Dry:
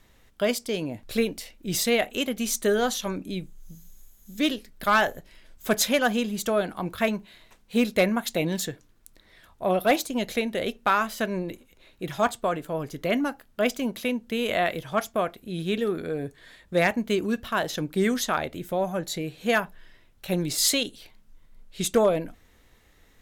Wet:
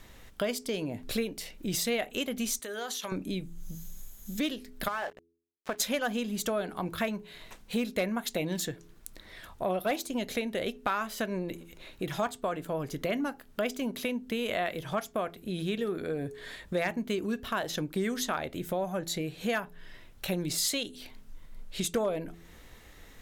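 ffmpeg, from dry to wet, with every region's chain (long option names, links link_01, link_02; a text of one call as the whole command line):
ffmpeg -i in.wav -filter_complex "[0:a]asettb=1/sr,asplit=3[link_01][link_02][link_03];[link_01]atrim=end=2.594[link_04];[link_02]atrim=start=2.59:end=3.12,asetpts=PTS-STARTPTS,afade=type=in:duration=0.004:curve=qsin,afade=type=out:start_time=0.526:duration=0.004:curve=qsin,highpass=frequency=800:poles=1,acompressor=threshold=-34dB:ratio=12:attack=3.2:release=140:knee=1:detection=peak[link_05];[link_03]atrim=start=3.116[link_06];[link_04][link_05]acrossfade=duration=0.004:curve1=hsin:curve2=qsin[link_07];[link_07][link_06]acrossfade=duration=0.004:curve1=qsin:curve2=hsin,asettb=1/sr,asplit=3[link_08][link_09][link_10];[link_08]atrim=end=4.884[link_11];[link_09]atrim=start=4.88:end=5.8,asetpts=PTS-STARTPTS,afade=type=in:duration=0.004:curve=qsin,afade=type=out:start_time=0.916:duration=0.004:curve=qsin,bandpass=frequency=960:width_type=q:width=0.61,acompressor=threshold=-23dB:ratio=6:attack=3.2:release=140:knee=1:detection=peak,aeval=exprs='sgn(val(0))*max(abs(val(0))-0.00841,0)':channel_layout=same[link_12];[link_10]atrim=start=5.796[link_13];[link_11][link_12]acrossfade=duration=0.004:curve1=hsin:curve2=qsin[link_14];[link_14][link_13]acrossfade=duration=0.004:curve1=qsin:curve2=hsin,bandreject=frequency=84.34:width_type=h:width=4,bandreject=frequency=168.68:width_type=h:width=4,bandreject=frequency=253.02:width_type=h:width=4,bandreject=frequency=337.36:width_type=h:width=4,bandreject=frequency=421.7:width_type=h:width=4,acompressor=threshold=-41dB:ratio=2.5,volume=6.5dB" out.wav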